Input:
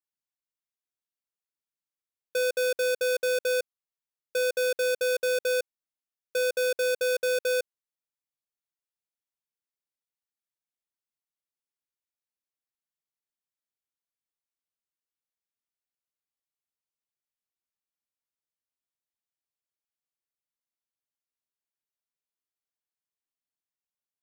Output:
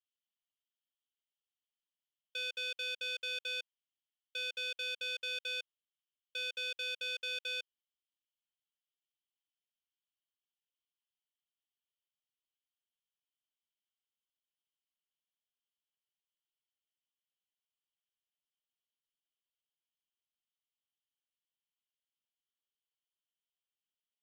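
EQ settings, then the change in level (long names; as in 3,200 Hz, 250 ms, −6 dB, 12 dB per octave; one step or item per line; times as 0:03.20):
resonant band-pass 3,100 Hz, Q 8.5
+9.0 dB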